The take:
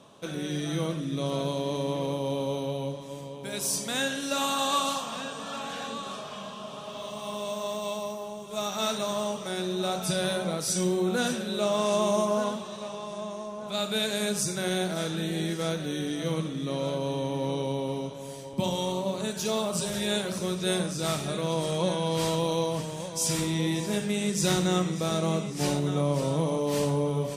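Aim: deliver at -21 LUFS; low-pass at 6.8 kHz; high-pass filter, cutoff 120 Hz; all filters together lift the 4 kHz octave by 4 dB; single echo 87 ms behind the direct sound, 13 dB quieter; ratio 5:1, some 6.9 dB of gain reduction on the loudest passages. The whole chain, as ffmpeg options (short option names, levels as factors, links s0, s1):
-af "highpass=120,lowpass=6800,equalizer=f=4000:t=o:g=5,acompressor=threshold=0.0398:ratio=5,aecho=1:1:87:0.224,volume=3.55"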